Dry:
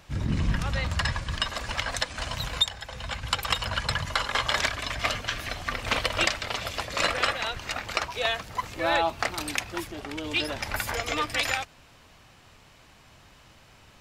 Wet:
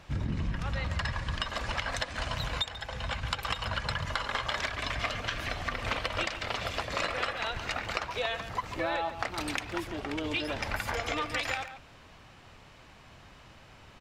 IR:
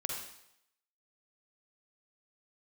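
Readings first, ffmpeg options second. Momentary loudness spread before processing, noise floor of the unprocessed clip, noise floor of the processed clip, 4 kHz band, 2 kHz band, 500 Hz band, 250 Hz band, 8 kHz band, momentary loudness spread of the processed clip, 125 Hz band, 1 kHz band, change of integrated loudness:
7 LU, -55 dBFS, -54 dBFS, -6.5 dB, -4.5 dB, -3.5 dB, -2.5 dB, -9.0 dB, 3 LU, -3.0 dB, -4.0 dB, -5.0 dB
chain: -filter_complex "[0:a]lowpass=f=3700:p=1,acompressor=threshold=0.0316:ratio=6,asplit=2[s0][s1];[s1]adelay=140,highpass=300,lowpass=3400,asoftclip=type=hard:threshold=0.0422,volume=0.316[s2];[s0][s2]amix=inputs=2:normalize=0,volume=1.19"

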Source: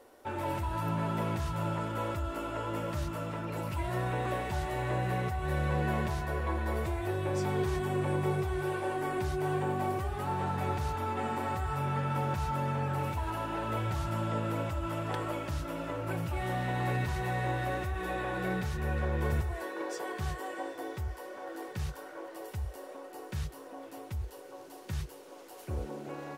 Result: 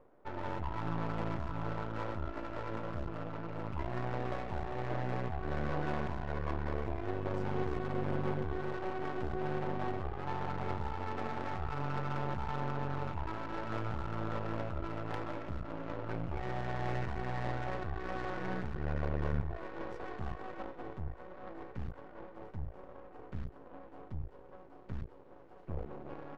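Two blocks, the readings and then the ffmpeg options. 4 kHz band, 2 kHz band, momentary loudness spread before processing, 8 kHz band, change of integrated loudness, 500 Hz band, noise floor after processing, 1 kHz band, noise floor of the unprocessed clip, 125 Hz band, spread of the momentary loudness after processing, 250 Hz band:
-7.5 dB, -6.0 dB, 9 LU, under -15 dB, -5.5 dB, -4.5 dB, -54 dBFS, -5.5 dB, -49 dBFS, -5.5 dB, 10 LU, -4.5 dB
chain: -af "aeval=exprs='max(val(0),0)':c=same,adynamicsmooth=sensitivity=5:basefreq=1200"

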